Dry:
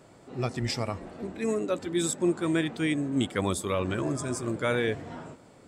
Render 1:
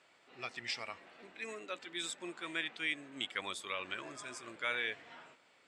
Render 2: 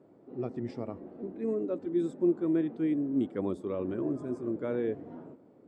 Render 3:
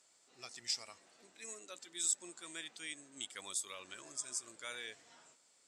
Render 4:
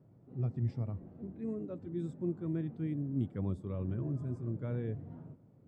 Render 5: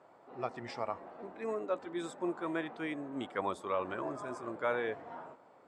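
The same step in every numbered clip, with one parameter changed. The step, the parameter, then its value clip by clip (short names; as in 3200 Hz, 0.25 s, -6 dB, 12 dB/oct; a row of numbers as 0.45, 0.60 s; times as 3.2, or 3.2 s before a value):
band-pass, frequency: 2600, 320, 6700, 120, 900 Hz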